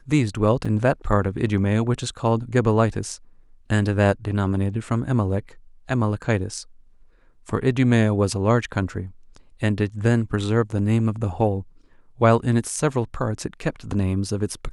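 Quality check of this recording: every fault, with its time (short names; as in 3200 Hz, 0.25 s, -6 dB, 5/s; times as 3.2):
0.65 gap 4.9 ms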